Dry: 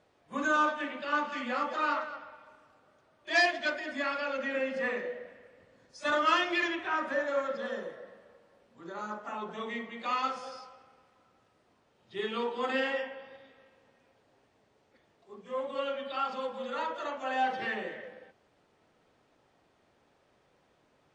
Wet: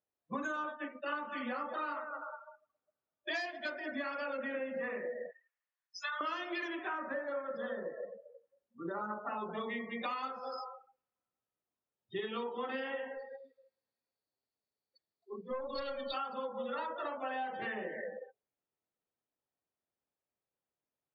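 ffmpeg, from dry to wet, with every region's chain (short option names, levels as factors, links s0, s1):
-filter_complex "[0:a]asettb=1/sr,asplit=3[s0][s1][s2];[s0]atrim=end=0.644[s3];[s1]atrim=start=0.64:end=1.19,asetpts=PTS-STARTPTS,afade=t=in:d=0.004:c=qsin,afade=t=out:st=0.546:d=0.004:c=qsin,agate=range=0.0224:threshold=0.0224:ratio=3:release=100:detection=peak,lowpass=f=6000:w=0.5412,lowpass=f=6000:w=1.3066[s4];[s2]atrim=start=1.186[s5];[s3][s4]acrossfade=d=0.004:c1=hsin:c2=qsin[s6];[s6][s5]acrossfade=d=0.004:c1=qsin:c2=hsin,asettb=1/sr,asplit=3[s7][s8][s9];[s7]atrim=end=5.314[s10];[s8]atrim=start=5.31:end=6.21,asetpts=PTS-STARTPTS,afade=t=in:d=0.004:c=qsin,afade=t=out:st=0.896:d=0.004:c=qsin,highpass=f=960:w=0.5412,highpass=f=960:w=1.3066,acompressor=threshold=0.01:ratio=2:attack=3.2:release=140:knee=1:detection=peak[s11];[s9]atrim=start=6.206[s12];[s10][s11]acrossfade=d=0.004:c1=hsin:c2=qsin[s13];[s13][s12]acrossfade=d=0.004:c1=qsin:c2=hsin,asettb=1/sr,asplit=3[s14][s15][s16];[s14]atrim=end=13.154[s17];[s15]atrim=start=13.15:end=16.14,asetpts=PTS-STARTPTS,afade=t=in:d=0.004:c=qsin,afade=t=out:st=2.986:d=0.004:c=qsin,lowpass=f=4500:t=q:w=9.6,equalizer=f=3000:w=4.7:g=-8,aeval=exprs='(tanh(28.2*val(0)+0.5)-tanh(0.5))/28.2':c=same[s18];[s16]atrim=start=16.136[s19];[s17][s18]acrossfade=d=0.004:c1=hsin:c2=qsin[s20];[s20][s19]acrossfade=d=0.004:c1=qsin:c2=hsin,afftdn=nr=36:nf=-45,adynamicequalizer=threshold=0.00447:dfrequency=2700:dqfactor=1.2:tfrequency=2700:tqfactor=1.2:attack=5:release=100:ratio=0.375:range=2.5:mode=cutabove:tftype=bell,acompressor=threshold=0.00708:ratio=10,volume=2.37"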